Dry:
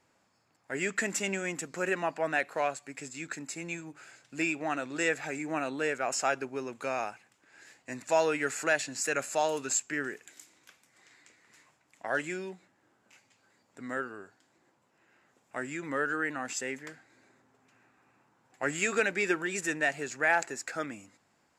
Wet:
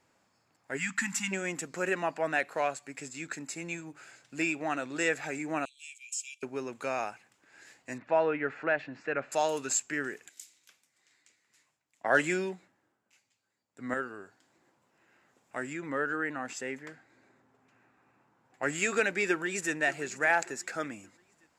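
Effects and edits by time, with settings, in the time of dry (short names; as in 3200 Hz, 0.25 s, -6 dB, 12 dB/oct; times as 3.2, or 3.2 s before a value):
0.77–1.32 spectral delete 300–800 Hz
5.65–6.43 rippled Chebyshev high-pass 2300 Hz, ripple 9 dB
7.98–9.32 Bessel low-pass 1900 Hz, order 4
10.29–13.94 three-band expander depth 70%
15.73–18.63 high shelf 3600 Hz -8 dB
19.29–19.73 echo throw 0.58 s, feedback 35%, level -16.5 dB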